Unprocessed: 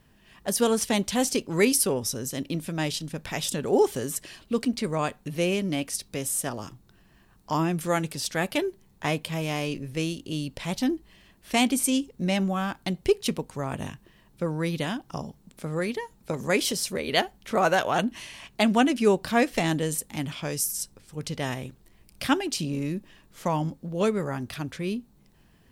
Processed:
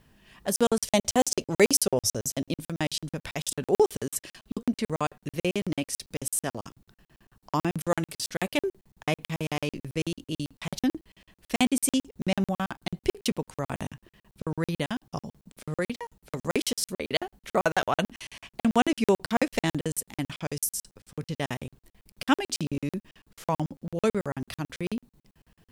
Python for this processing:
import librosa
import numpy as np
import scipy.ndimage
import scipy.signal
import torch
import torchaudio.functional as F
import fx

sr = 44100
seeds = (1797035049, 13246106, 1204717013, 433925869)

y = fx.graphic_eq_15(x, sr, hz=(100, 630, 6300), db=(6, 8, 6), at=(0.84, 2.58))
y = fx.buffer_crackle(y, sr, first_s=0.56, period_s=0.11, block=2048, kind='zero')